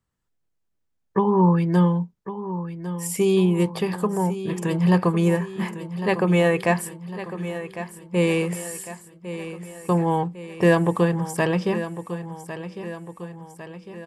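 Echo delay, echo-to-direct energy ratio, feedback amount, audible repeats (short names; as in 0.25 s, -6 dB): 1.103 s, -10.5 dB, 54%, 5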